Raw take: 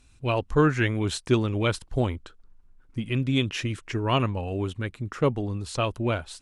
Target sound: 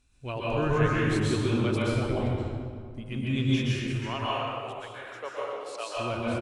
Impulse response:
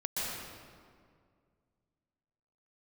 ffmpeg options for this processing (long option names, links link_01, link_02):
-filter_complex "[0:a]asettb=1/sr,asplit=3[link_01][link_02][link_03];[link_01]atrim=end=3.904[link_04];[link_02]atrim=start=3.9:end=5.96,asetpts=PTS-STARTPTS,afade=type=in:duration=0.004:curve=qsin,afade=type=out:start_time=2.056:duration=0.004:curve=qsin,highpass=frequency=530:width=0.5412,highpass=frequency=530:width=1.3066[link_05];[link_03]atrim=start=5.956[link_06];[link_04][link_05]acrossfade=duration=0.004:curve1=hsin:curve2=qsin[link_07];[link_07][link_06]acrossfade=duration=0.004:curve1=qsin:curve2=hsin,asplit=2[link_08][link_09];[link_09]adelay=220,highpass=300,lowpass=3400,asoftclip=type=hard:threshold=-18dB,volume=-21dB[link_10];[link_08][link_10]amix=inputs=2:normalize=0[link_11];[1:a]atrim=start_sample=2205[link_12];[link_11][link_12]afir=irnorm=-1:irlink=0,volume=-7.5dB"